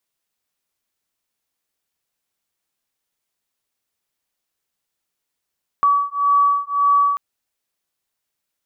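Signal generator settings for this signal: beating tones 1140 Hz, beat 1.8 Hz, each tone -17 dBFS 1.34 s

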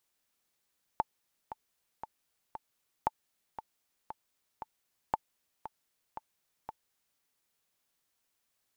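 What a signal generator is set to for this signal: metronome 116 bpm, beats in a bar 4, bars 3, 878 Hz, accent 13 dB -14 dBFS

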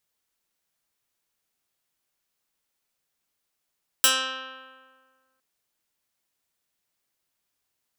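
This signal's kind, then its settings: plucked string C4, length 1.36 s, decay 1.71 s, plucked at 0.12, medium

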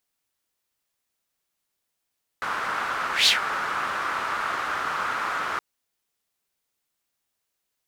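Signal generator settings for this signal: whoosh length 3.17 s, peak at 0.85, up 0.15 s, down 0.13 s, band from 1300 Hz, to 4000 Hz, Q 3.4, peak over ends 11 dB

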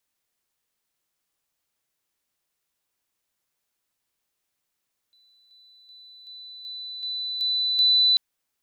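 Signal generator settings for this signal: level ladder 3990 Hz -57.5 dBFS, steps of 6 dB, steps 8, 0.38 s 0.00 s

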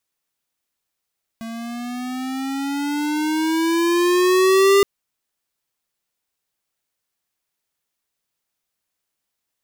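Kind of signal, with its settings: gliding synth tone square, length 3.42 s, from 225 Hz, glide +10 st, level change +18.5 dB, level -12.5 dB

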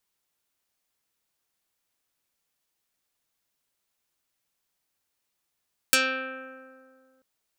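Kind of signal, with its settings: plucked string C4, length 1.29 s, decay 2.20 s, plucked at 0.26, dark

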